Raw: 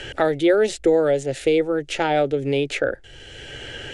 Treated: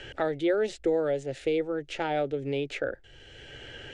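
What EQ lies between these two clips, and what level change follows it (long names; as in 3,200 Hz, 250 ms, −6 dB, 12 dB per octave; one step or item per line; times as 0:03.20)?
high-frequency loss of the air 63 metres
−8.5 dB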